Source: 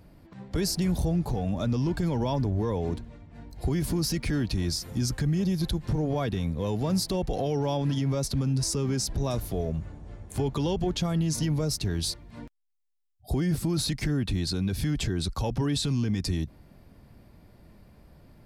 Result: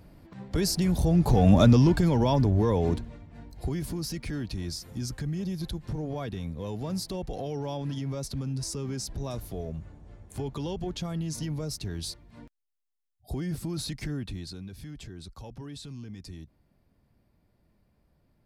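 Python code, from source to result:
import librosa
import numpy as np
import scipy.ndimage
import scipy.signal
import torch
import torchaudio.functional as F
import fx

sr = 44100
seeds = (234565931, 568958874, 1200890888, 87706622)

y = fx.gain(x, sr, db=fx.line((0.98, 1.0), (1.55, 12.0), (2.04, 4.0), (2.92, 4.0), (3.93, -6.0), (14.14, -6.0), (14.73, -14.5)))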